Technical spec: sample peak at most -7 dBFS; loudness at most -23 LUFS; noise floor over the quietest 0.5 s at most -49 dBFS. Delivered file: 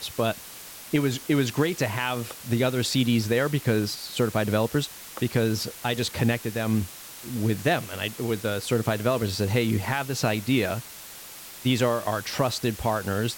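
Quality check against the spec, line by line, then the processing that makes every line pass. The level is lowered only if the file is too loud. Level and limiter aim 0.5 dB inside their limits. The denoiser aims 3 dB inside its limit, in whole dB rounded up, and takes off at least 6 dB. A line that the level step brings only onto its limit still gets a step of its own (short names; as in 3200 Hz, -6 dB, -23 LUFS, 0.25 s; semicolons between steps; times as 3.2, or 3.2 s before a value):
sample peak -12.0 dBFS: OK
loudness -26.0 LUFS: OK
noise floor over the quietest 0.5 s -43 dBFS: fail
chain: denoiser 9 dB, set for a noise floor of -43 dBFS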